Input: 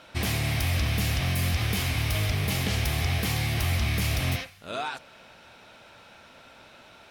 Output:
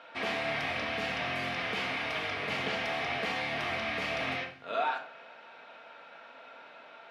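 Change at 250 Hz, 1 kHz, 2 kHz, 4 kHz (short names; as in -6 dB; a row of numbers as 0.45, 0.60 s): -8.0, +2.0, 0.0, -5.0 dB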